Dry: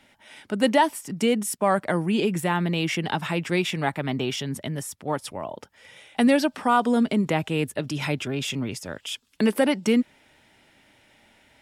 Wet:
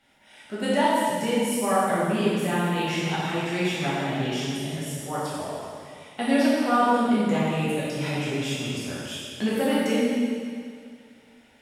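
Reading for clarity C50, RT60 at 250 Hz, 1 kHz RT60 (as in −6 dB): −3.5 dB, 2.2 s, 2.3 s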